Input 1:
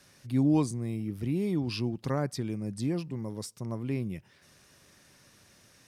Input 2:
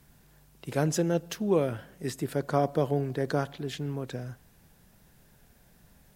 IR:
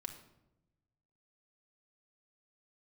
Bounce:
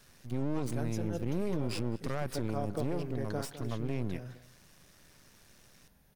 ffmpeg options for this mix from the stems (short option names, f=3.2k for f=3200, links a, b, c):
-filter_complex "[0:a]aeval=exprs='max(val(0),0)':c=same,volume=2dB,asplit=3[a][b][c];[b]volume=-23dB[d];[1:a]bandreject=f=7.6k:w=5.6,volume=-6.5dB,asplit=2[e][f];[f]volume=-15.5dB[g];[c]apad=whole_len=271484[h];[e][h]sidechaincompress=threshold=-33dB:ratio=8:attack=5.8:release=161[i];[d][g]amix=inputs=2:normalize=0,aecho=0:1:209:1[j];[a][i][j]amix=inputs=3:normalize=0,alimiter=limit=-23dB:level=0:latency=1:release=33"